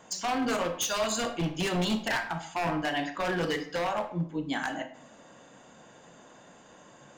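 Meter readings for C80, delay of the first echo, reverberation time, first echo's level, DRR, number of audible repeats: 13.5 dB, none, 0.65 s, none, 7.0 dB, none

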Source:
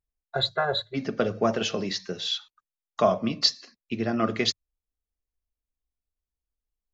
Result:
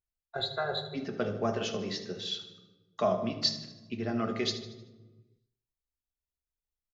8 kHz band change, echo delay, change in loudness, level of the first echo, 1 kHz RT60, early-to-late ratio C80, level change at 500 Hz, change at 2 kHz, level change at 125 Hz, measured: n/a, 77 ms, -6.0 dB, -13.0 dB, 1.0 s, 11.5 dB, -5.5 dB, -7.0 dB, -4.0 dB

